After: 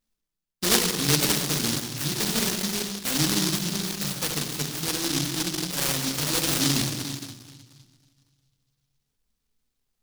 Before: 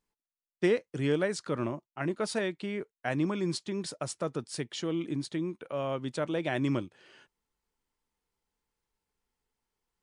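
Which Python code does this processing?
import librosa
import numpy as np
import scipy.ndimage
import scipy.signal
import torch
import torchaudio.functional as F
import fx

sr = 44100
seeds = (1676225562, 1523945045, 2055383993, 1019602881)

y = fx.room_shoebox(x, sr, seeds[0], volume_m3=870.0, walls='mixed', distance_m=1.9)
y = fx.noise_mod_delay(y, sr, seeds[1], noise_hz=4500.0, depth_ms=0.5)
y = y * 10.0 ** (1.5 / 20.0)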